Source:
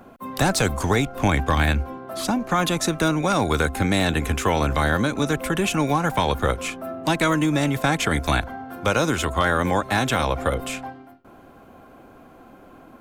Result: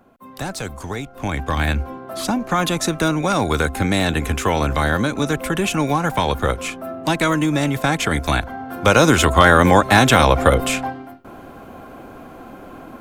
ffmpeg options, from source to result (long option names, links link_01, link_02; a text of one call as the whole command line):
ffmpeg -i in.wav -af "volume=9dB,afade=type=in:start_time=1.12:duration=0.75:silence=0.334965,afade=type=in:start_time=8.45:duration=0.69:silence=0.446684" out.wav